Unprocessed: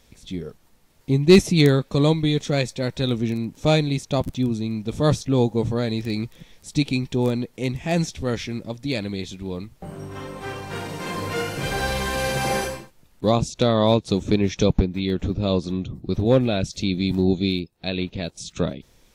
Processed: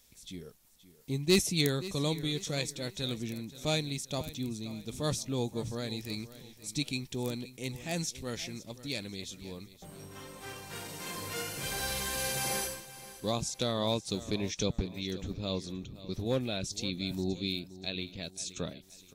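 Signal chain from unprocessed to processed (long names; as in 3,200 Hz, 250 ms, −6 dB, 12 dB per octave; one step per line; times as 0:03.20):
first-order pre-emphasis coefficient 0.8
on a send: repeating echo 524 ms, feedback 37%, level −16 dB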